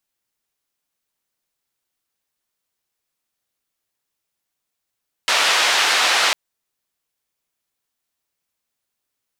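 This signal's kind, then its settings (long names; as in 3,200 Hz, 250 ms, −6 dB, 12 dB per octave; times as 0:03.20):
band-limited noise 690–3,900 Hz, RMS −17 dBFS 1.05 s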